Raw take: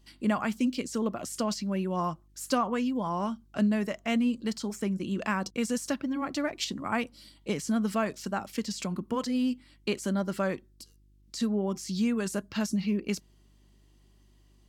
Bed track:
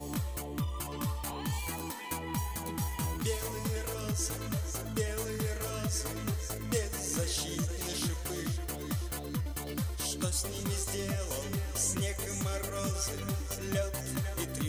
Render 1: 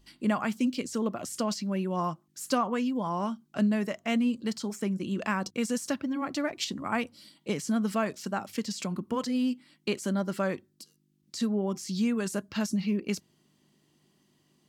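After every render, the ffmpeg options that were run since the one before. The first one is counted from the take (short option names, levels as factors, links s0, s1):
-af "bandreject=f=50:t=h:w=4,bandreject=f=100:t=h:w=4"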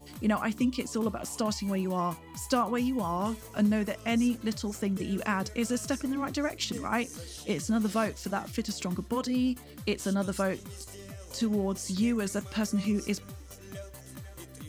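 -filter_complex "[1:a]volume=0.299[s0];[0:a][s0]amix=inputs=2:normalize=0"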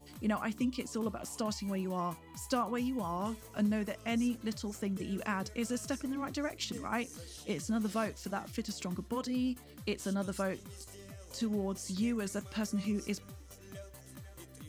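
-af "volume=0.531"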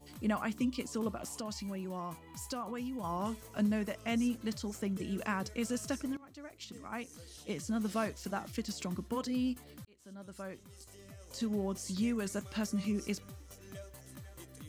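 -filter_complex "[0:a]asettb=1/sr,asplit=3[s0][s1][s2];[s0]atrim=end=1.264[s3];[s1]atrim=start=1.26:end=3.04,asetpts=PTS-STARTPTS,afade=t=in:d=0.004:c=qsin,afade=t=out:st=1.776:d=0.004:c=qsin,acompressor=threshold=0.0126:ratio=2.5:attack=3.2:release=140:knee=1:detection=peak[s4];[s2]atrim=start=3.036[s5];[s3][s4]acrossfade=d=0.004:c1=hsin:c2=qsin[s6];[s6][s5]acrossfade=d=0.004:c1=qsin:c2=hsin,asplit=3[s7][s8][s9];[s7]atrim=end=6.17,asetpts=PTS-STARTPTS,afade=t=out:st=6.166:d=0.004:c=hsin:silence=0.1[s10];[s8]atrim=start=6.17:end=9.85,asetpts=PTS-STARTPTS,afade=t=in:d=1.85:silence=0.1,afade=t=out:st=3.676:d=0.004:c=hsin[s11];[s9]atrim=start=9.85,asetpts=PTS-STARTPTS,afade=t=in:d=1.77[s12];[s10][s11][s12]concat=n=3:v=0:a=1"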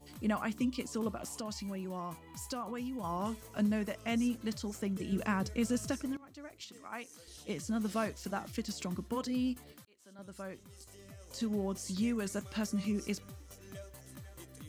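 -filter_complex "[0:a]asettb=1/sr,asplit=3[s0][s1][s2];[s0]atrim=end=5.124[s3];[s1]atrim=start=5.12:end=5.91,asetpts=PTS-STARTPTS,afade=t=in:d=0.004:c=qsin,afade=t=out:st=0.786:d=0.004:c=qsin,lowshelf=f=260:g=7[s4];[s2]atrim=start=5.906[s5];[s3][s4]acrossfade=d=0.004:c1=hsin:c2=qsin[s6];[s6][s5]acrossfade=d=0.004:c1=qsin:c2=hsin,asettb=1/sr,asplit=3[s7][s8][s9];[s7]atrim=end=6.614[s10];[s8]atrim=start=6.61:end=7.28,asetpts=PTS-STARTPTS,afade=t=in:d=0.004:c=qsin,afade=t=out:st=0.666:d=0.004:c=qsin,highpass=f=460:p=1[s11];[s9]atrim=start=7.276[s12];[s10][s11]acrossfade=d=0.004:c1=hsin:c2=qsin[s13];[s13][s12]acrossfade=d=0.004:c1=qsin:c2=hsin,asettb=1/sr,asplit=3[s14][s15][s16];[s14]atrim=end=9.724[s17];[s15]atrim=start=9.72:end=10.19,asetpts=PTS-STARTPTS,afade=t=in:d=0.004:c=qsin,afade=t=out:st=0.466:d=0.004:c=qsin,highpass=f=470:p=1[s18];[s16]atrim=start=10.186[s19];[s17][s18]acrossfade=d=0.004:c1=hsin:c2=qsin[s20];[s20][s19]acrossfade=d=0.004:c1=qsin:c2=hsin"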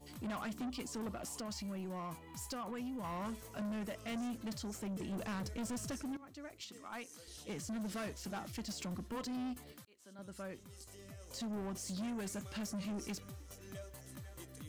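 -af "asoftclip=type=tanh:threshold=0.0133"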